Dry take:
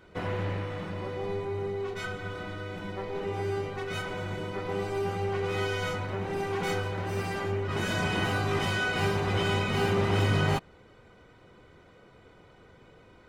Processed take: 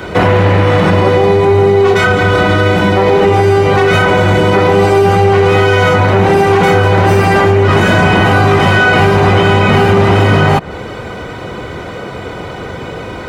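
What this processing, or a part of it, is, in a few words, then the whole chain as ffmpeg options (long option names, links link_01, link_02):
mastering chain: -filter_complex "[0:a]highpass=47,equalizer=frequency=740:width_type=o:width=0.77:gain=2.5,acrossover=split=170|2600[link_01][link_02][link_03];[link_01]acompressor=threshold=-32dB:ratio=4[link_04];[link_02]acompressor=threshold=-28dB:ratio=4[link_05];[link_03]acompressor=threshold=-51dB:ratio=4[link_06];[link_04][link_05][link_06]amix=inputs=3:normalize=0,acompressor=threshold=-32dB:ratio=3,asoftclip=type=tanh:threshold=-25dB,asoftclip=type=hard:threshold=-28.5dB,alimiter=level_in=32dB:limit=-1dB:release=50:level=0:latency=1,volume=-1dB"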